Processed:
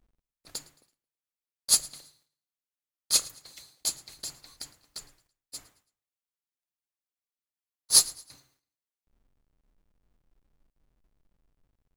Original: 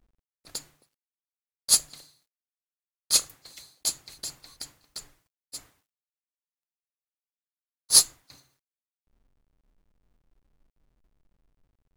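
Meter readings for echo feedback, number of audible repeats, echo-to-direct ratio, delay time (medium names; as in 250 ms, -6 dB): 37%, 2, -21.0 dB, 110 ms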